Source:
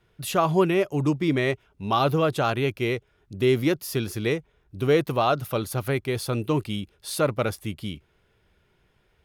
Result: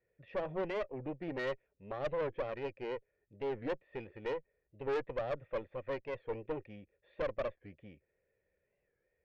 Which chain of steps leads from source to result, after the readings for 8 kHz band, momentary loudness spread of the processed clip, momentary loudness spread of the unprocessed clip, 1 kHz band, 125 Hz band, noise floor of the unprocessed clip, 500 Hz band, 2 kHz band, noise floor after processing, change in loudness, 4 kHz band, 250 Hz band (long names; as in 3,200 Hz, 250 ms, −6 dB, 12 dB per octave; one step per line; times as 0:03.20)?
below −30 dB, 10 LU, 11 LU, −17.0 dB, −22.5 dB, −66 dBFS, −12.5 dB, −14.5 dB, −83 dBFS, −14.5 dB, −21.5 dB, −19.5 dB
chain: formant resonators in series e
tube saturation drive 33 dB, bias 0.75
wow of a warped record 45 rpm, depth 160 cents
level +2.5 dB